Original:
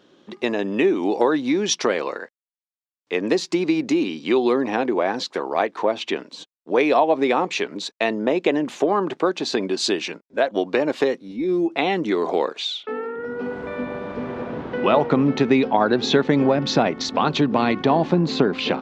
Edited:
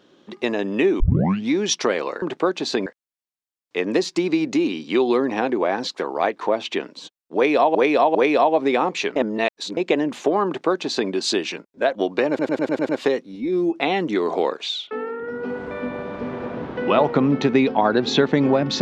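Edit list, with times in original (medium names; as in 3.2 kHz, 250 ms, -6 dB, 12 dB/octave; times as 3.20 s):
1.00 s: tape start 0.50 s
6.71–7.11 s: loop, 3 plays
7.72–8.33 s: reverse
9.02–9.66 s: copy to 2.22 s
10.85 s: stutter 0.10 s, 7 plays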